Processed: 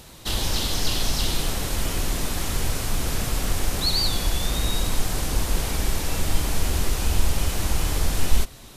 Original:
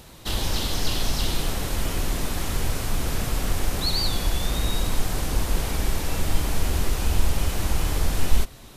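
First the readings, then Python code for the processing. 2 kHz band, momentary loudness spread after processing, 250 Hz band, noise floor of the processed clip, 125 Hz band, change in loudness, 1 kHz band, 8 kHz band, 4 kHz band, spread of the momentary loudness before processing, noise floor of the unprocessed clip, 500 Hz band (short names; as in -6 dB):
+1.0 dB, 3 LU, 0.0 dB, -44 dBFS, 0.0 dB, +1.5 dB, +0.5 dB, +3.5 dB, +2.5 dB, 3 LU, -44 dBFS, 0.0 dB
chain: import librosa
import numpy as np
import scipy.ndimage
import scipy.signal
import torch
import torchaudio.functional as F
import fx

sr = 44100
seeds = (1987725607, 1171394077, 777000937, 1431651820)

y = fx.peak_eq(x, sr, hz=7400.0, db=3.5, octaves=2.4)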